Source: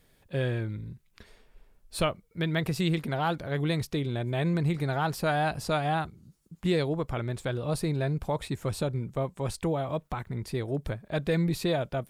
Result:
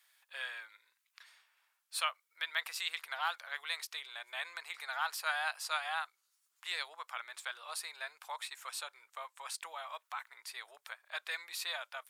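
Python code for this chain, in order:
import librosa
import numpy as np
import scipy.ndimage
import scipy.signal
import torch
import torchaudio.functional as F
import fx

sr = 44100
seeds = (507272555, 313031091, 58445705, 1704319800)

y = scipy.signal.sosfilt(scipy.signal.cheby2(4, 70, 230.0, 'highpass', fs=sr, output='sos'), x)
y = F.gain(torch.from_numpy(y), -1.0).numpy()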